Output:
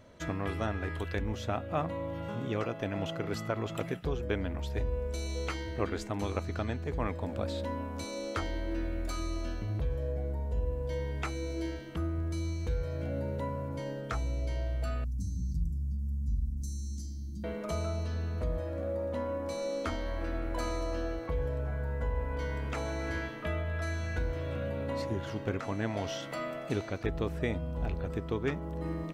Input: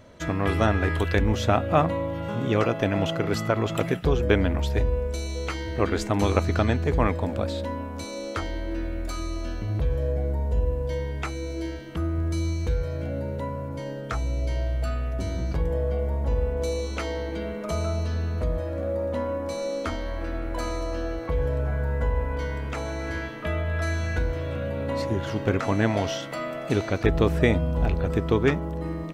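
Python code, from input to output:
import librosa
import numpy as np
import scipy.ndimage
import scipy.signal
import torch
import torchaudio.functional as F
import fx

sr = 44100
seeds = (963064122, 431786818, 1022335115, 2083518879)

y = fx.ellip_bandstop(x, sr, low_hz=220.0, high_hz=5600.0, order=3, stop_db=40, at=(15.04, 17.44))
y = fx.rider(y, sr, range_db=4, speed_s=0.5)
y = y * 10.0 ** (-8.0 / 20.0)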